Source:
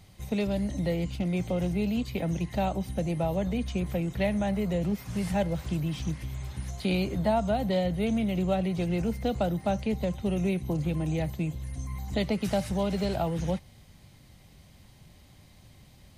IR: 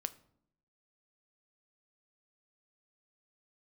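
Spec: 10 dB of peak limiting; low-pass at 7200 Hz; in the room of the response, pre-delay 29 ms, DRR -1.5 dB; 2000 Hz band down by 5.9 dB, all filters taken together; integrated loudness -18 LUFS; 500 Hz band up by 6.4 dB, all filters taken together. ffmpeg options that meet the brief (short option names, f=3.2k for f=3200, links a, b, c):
-filter_complex "[0:a]lowpass=7.2k,equalizer=f=500:t=o:g=8.5,equalizer=f=2k:t=o:g=-8,alimiter=limit=-20.5dB:level=0:latency=1,asplit=2[a][b];[1:a]atrim=start_sample=2205,adelay=29[c];[b][c]afir=irnorm=-1:irlink=0,volume=2.5dB[d];[a][d]amix=inputs=2:normalize=0,volume=8dB"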